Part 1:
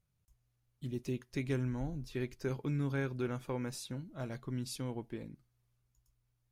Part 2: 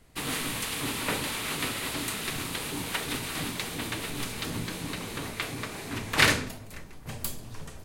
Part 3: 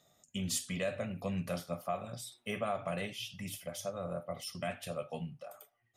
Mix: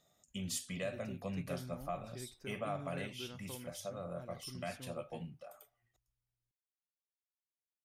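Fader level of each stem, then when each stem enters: -12.0 dB, off, -4.5 dB; 0.00 s, off, 0.00 s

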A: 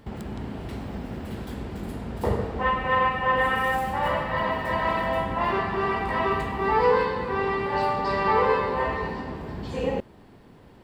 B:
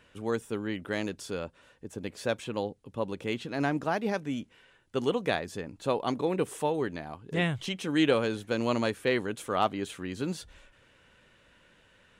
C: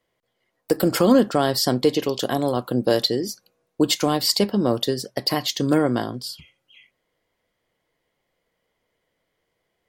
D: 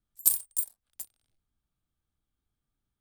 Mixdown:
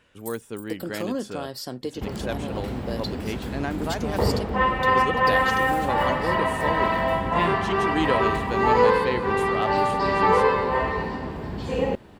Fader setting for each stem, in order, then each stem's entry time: +2.5, -1.0, -13.5, -17.5 dB; 1.95, 0.00, 0.00, 0.00 s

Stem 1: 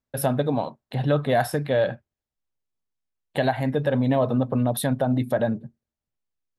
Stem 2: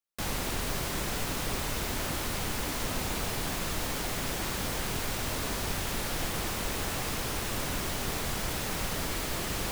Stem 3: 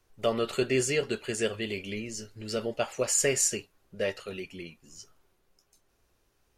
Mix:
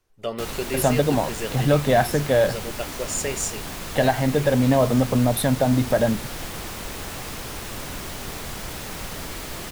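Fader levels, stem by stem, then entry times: +3.0, -0.5, -2.0 dB; 0.60, 0.20, 0.00 s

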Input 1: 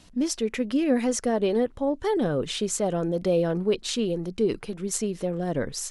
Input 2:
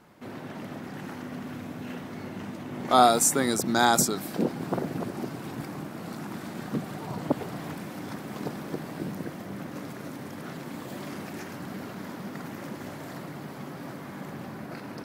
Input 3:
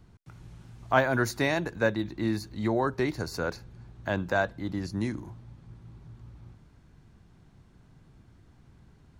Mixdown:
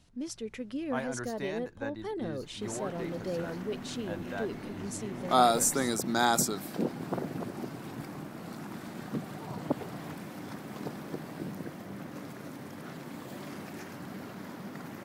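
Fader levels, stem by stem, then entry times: -12.0, -4.5, -13.0 dB; 0.00, 2.40, 0.00 s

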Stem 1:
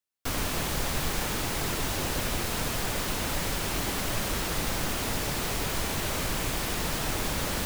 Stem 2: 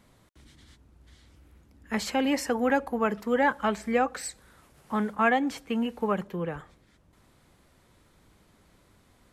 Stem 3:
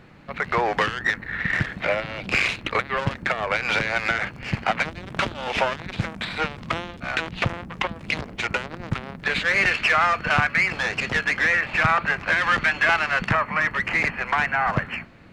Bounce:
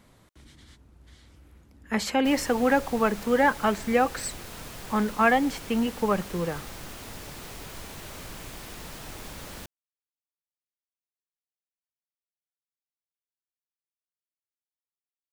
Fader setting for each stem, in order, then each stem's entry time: -11.0 dB, +2.5 dB, off; 2.00 s, 0.00 s, off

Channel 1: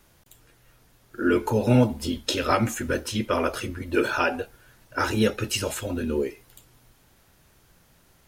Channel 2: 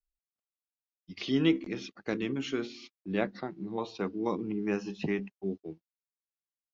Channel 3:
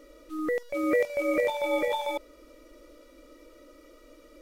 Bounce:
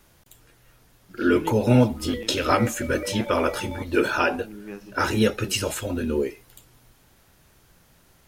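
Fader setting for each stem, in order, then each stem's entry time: +1.5, -7.0, -7.5 dB; 0.00, 0.00, 1.65 s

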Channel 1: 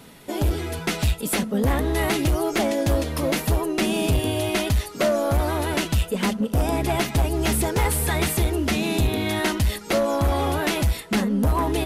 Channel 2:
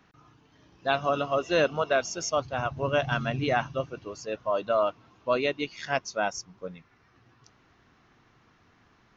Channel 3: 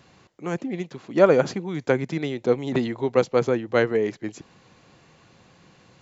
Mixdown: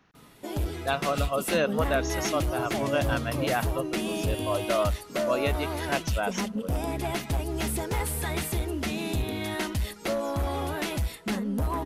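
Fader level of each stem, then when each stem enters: -7.5 dB, -2.0 dB, off; 0.15 s, 0.00 s, off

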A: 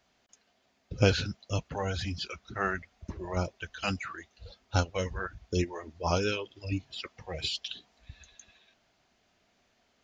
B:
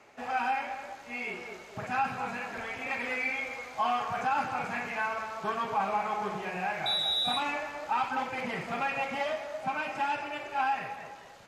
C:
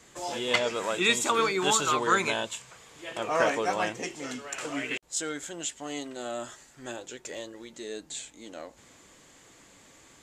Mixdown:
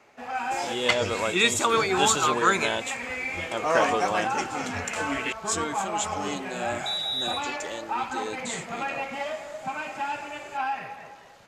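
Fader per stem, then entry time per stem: -11.0, 0.0, +2.5 dB; 0.00, 0.00, 0.35 s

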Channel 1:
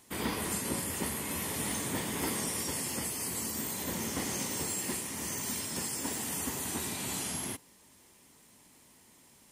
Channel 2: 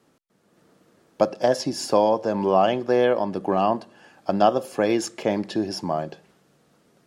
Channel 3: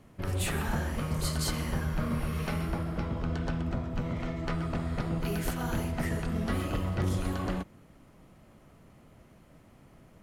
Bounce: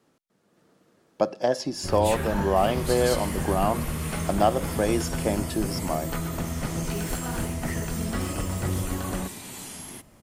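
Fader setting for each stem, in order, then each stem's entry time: -3.5, -3.5, +1.5 dB; 2.45, 0.00, 1.65 s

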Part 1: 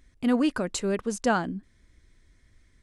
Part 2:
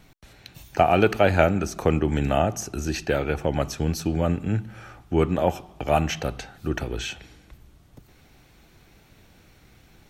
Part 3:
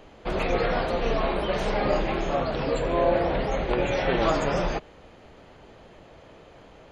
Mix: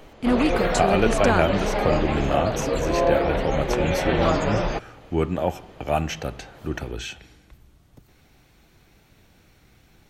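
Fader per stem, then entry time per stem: +2.0, -2.0, +1.5 dB; 0.00, 0.00, 0.00 s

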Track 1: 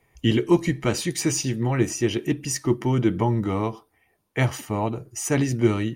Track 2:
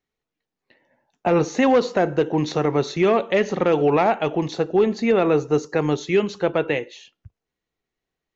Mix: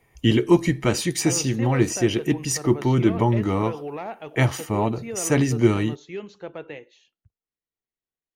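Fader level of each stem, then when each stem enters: +2.0, -15.0 dB; 0.00, 0.00 s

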